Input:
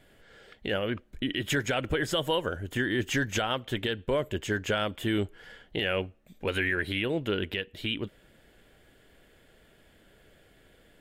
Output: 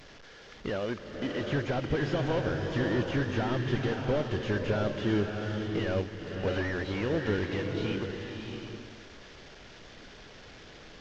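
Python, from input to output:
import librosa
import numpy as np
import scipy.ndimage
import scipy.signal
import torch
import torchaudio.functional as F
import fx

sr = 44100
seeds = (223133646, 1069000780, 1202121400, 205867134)

y = fx.delta_mod(x, sr, bps=32000, step_db=-45.0)
y = fx.low_shelf(y, sr, hz=170.0, db=-10.0, at=(0.7, 1.41))
y = fx.rev_bloom(y, sr, seeds[0], attack_ms=690, drr_db=3.0)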